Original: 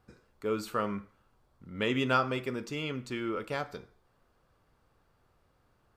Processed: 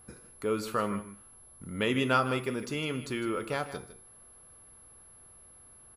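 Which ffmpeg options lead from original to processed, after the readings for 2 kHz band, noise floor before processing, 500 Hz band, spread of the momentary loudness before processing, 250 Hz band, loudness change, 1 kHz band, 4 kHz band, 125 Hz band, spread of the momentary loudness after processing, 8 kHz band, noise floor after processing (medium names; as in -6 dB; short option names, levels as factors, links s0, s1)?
+1.5 dB, -71 dBFS, +1.5 dB, 13 LU, +2.0 dB, +1.5 dB, +1.0 dB, +1.5 dB, +2.0 dB, 21 LU, +8.0 dB, -55 dBFS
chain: -filter_complex "[0:a]asplit=2[s0][s1];[s1]acompressor=threshold=0.00501:ratio=6,volume=1.12[s2];[s0][s2]amix=inputs=2:normalize=0,aeval=exprs='val(0)+0.002*sin(2*PI*11000*n/s)':c=same,aecho=1:1:156:0.211"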